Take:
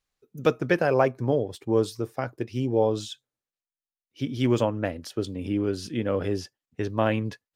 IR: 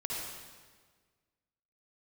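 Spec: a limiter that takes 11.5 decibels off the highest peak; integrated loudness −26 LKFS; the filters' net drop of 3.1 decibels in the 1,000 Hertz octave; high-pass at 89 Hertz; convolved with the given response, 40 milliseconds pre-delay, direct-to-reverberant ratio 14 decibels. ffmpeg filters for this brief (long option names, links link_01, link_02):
-filter_complex "[0:a]highpass=89,equalizer=frequency=1000:width_type=o:gain=-4.5,alimiter=limit=-20.5dB:level=0:latency=1,asplit=2[link_01][link_02];[1:a]atrim=start_sample=2205,adelay=40[link_03];[link_02][link_03]afir=irnorm=-1:irlink=0,volume=-17.5dB[link_04];[link_01][link_04]amix=inputs=2:normalize=0,volume=6.5dB"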